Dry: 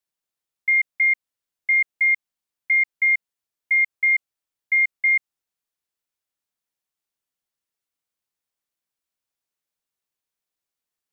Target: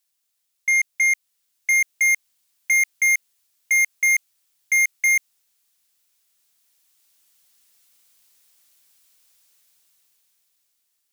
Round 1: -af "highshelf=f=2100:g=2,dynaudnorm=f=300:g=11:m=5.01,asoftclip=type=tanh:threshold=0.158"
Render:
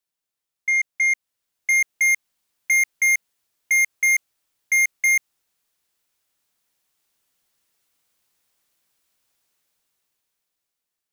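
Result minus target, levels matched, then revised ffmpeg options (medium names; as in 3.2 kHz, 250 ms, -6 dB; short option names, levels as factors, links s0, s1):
4 kHz band -4.5 dB
-af "highshelf=f=2100:g=14,dynaudnorm=f=300:g=11:m=5.01,asoftclip=type=tanh:threshold=0.158"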